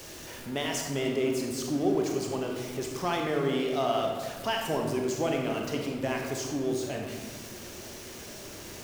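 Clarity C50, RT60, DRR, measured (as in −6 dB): 2.5 dB, 1.5 s, 1.0 dB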